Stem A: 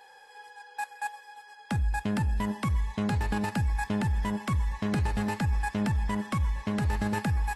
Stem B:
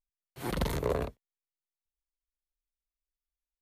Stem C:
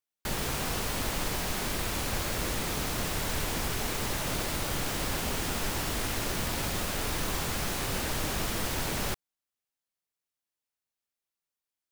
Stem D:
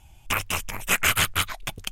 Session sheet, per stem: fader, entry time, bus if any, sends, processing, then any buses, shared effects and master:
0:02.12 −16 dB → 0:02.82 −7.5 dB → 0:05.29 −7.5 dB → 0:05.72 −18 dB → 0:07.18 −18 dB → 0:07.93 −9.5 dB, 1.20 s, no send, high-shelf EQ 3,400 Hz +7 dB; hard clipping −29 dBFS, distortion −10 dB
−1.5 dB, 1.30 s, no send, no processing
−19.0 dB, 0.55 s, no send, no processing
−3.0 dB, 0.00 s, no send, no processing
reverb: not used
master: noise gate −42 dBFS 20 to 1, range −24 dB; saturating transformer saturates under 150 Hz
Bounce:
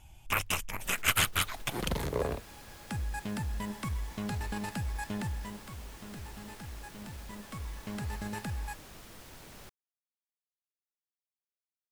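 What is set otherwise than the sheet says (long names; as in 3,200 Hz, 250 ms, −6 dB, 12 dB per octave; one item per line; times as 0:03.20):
stem A: missing hard clipping −29 dBFS, distortion −10 dB
master: missing noise gate −42 dBFS 20 to 1, range −24 dB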